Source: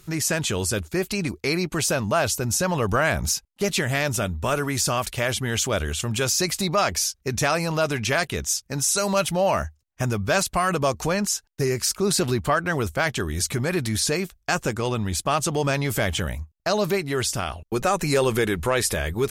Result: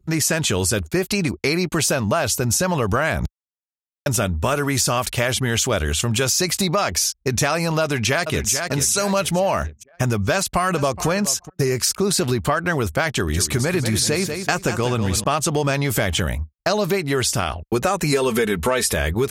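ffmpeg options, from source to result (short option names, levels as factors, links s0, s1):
-filter_complex "[0:a]asplit=2[s0][s1];[s1]afade=t=in:st=7.82:d=0.01,afade=t=out:st=8.51:d=0.01,aecho=0:1:440|880|1320|1760|2200:0.354813|0.159666|0.0718497|0.0323324|0.0145496[s2];[s0][s2]amix=inputs=2:normalize=0,asplit=2[s3][s4];[s4]afade=t=in:st=10.35:d=0.01,afade=t=out:st=11.07:d=0.01,aecho=0:1:420|840:0.141254|0.0211881[s5];[s3][s5]amix=inputs=2:normalize=0,asettb=1/sr,asplit=3[s6][s7][s8];[s6]atrim=end=13.094[s9];[s7]atrim=start=13.09:end=15.24,asetpts=PTS-STARTPTS,afade=t=in:d=0.004:c=qsin,afade=t=out:st=2.146:d=0.004:c=qsin,aecho=1:1:190|380|570|760:0.316|0.114|0.041|0.0148,atrim=end_sample=94815[s10];[s8]atrim=start=15.236[s11];[s9][s10]acrossfade=d=0.004:c1=hsin:c2=qsin[s12];[s12][s11]acrossfade=d=0.004:c1=qsin:c2=hsin,asettb=1/sr,asplit=3[s13][s14][s15];[s13]atrim=end=18.124[s16];[s14]atrim=start=18.12:end=18.93,asetpts=PTS-STARTPTS,afade=t=in:d=0.004:c=qsin,afade=t=out:st=0.806:d=0.004:c=qsin,aecho=1:1:4.5:0.65,atrim=end_sample=35721[s17];[s15]atrim=start=18.926[s18];[s16][s17]acrossfade=d=0.004:c1=hsin:c2=qsin[s19];[s19][s18]acrossfade=d=0.004:c1=qsin:c2=hsin,asplit=3[s20][s21][s22];[s20]atrim=end=3.26,asetpts=PTS-STARTPTS,afade=t=out:st=3.256:d=0.004:c=hsin[s23];[s21]atrim=start=3.26:end=4.06,asetpts=PTS-STARTPTS,volume=0[s24];[s22]atrim=start=4.06,asetpts=PTS-STARTPTS,afade=t=in:d=0.004:c=hsin[s25];[s23][s24][s25]concat=n=3:v=0:a=1,anlmdn=0.0398,highpass=43,acompressor=threshold=0.0708:ratio=6,volume=2.24"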